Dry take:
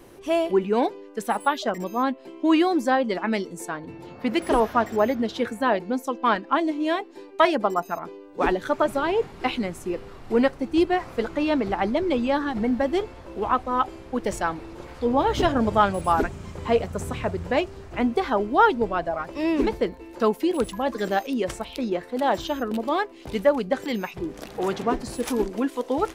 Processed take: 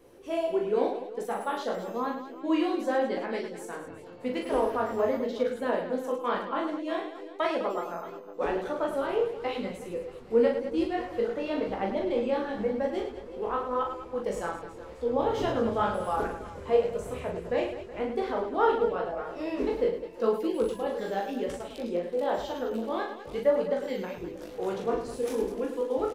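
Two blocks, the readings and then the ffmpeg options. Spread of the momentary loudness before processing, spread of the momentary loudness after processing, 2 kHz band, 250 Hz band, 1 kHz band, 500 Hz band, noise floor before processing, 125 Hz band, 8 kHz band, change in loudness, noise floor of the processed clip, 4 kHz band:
9 LU, 9 LU, -8.5 dB, -8.0 dB, -8.0 dB, -3.0 dB, -44 dBFS, -9.0 dB, no reading, -5.5 dB, -45 dBFS, -9.0 dB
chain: -af "equalizer=f=490:w=3.7:g=10.5,flanger=delay=15.5:depth=7.8:speed=0.93,aecho=1:1:40|104|206.4|370.2|632.4:0.631|0.398|0.251|0.158|0.1,volume=0.398"

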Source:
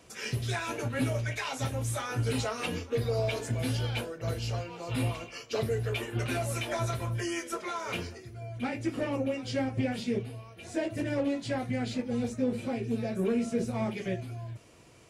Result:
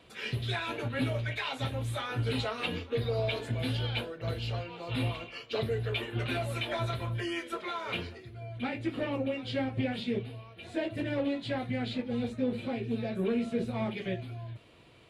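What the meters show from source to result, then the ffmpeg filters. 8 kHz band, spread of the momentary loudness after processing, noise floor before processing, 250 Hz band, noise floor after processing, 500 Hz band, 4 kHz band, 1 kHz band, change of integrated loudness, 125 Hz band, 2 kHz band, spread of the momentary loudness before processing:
-12.5 dB, 5 LU, -49 dBFS, -1.5 dB, -51 dBFS, -1.5 dB, +2.0 dB, -1.0 dB, -1.0 dB, -1.5 dB, 0.0 dB, 6 LU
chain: -af "highshelf=f=4700:t=q:w=3:g=-7.5,volume=0.841"

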